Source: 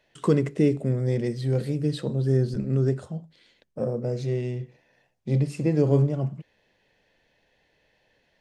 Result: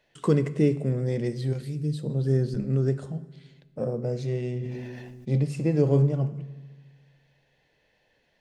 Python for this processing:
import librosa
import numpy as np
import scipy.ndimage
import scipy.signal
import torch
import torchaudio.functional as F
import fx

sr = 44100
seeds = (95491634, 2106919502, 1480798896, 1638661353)

y = fx.peak_eq(x, sr, hz=fx.line((1.52, 340.0), (2.09, 2200.0)), db=-14.0, octaves=3.0, at=(1.52, 2.09), fade=0.02)
y = fx.rev_fdn(y, sr, rt60_s=1.4, lf_ratio=1.25, hf_ratio=0.8, size_ms=40.0, drr_db=13.5)
y = fx.sustainer(y, sr, db_per_s=25.0, at=(4.43, 5.36))
y = F.gain(torch.from_numpy(y), -1.5).numpy()